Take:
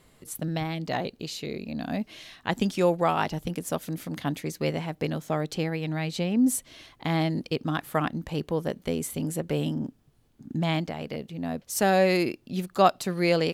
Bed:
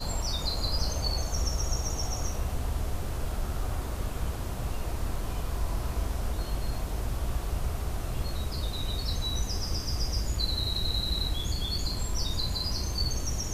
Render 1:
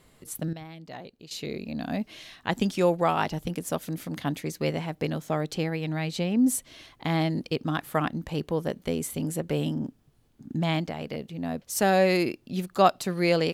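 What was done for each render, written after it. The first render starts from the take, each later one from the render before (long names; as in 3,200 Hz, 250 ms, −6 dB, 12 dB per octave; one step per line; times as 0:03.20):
0:00.53–0:01.31: clip gain −12 dB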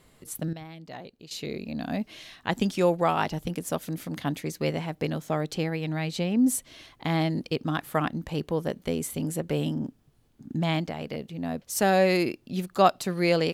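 no processing that can be heard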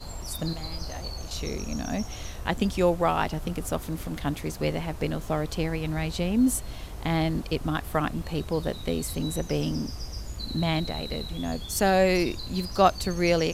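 mix in bed −6.5 dB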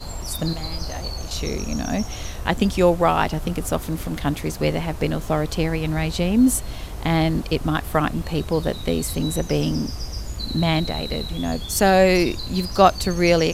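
level +6 dB
brickwall limiter −1 dBFS, peak gain reduction 1 dB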